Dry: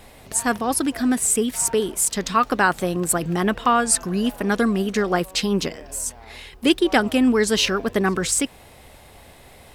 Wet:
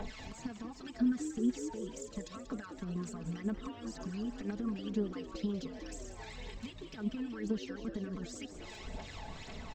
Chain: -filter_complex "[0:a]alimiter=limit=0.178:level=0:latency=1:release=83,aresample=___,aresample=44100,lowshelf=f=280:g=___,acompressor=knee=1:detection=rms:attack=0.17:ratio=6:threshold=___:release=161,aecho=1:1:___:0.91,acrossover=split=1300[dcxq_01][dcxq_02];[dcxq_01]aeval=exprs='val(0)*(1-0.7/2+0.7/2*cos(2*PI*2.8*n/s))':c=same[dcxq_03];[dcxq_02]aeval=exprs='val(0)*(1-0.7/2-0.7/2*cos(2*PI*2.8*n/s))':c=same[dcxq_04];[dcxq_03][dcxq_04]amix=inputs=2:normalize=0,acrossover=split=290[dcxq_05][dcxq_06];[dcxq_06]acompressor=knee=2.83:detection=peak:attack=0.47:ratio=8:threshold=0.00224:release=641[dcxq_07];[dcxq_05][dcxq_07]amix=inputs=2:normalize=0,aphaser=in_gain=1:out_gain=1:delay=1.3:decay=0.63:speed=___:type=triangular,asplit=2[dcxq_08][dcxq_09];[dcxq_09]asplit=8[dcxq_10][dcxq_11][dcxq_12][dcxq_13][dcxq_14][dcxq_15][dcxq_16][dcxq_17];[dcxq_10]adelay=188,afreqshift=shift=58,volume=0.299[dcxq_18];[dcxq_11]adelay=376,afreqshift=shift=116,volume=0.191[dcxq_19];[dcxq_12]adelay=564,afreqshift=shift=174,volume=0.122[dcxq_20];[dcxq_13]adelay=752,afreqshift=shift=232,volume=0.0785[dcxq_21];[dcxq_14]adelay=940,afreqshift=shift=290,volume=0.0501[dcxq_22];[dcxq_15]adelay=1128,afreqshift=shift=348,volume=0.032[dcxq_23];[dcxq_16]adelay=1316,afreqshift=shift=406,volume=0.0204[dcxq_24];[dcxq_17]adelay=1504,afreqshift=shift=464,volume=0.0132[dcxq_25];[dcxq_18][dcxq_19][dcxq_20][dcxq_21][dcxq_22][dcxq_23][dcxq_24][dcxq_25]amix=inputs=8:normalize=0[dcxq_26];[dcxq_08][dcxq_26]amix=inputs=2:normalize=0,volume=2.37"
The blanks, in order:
16000, -11.5, 0.0112, 4.6, 2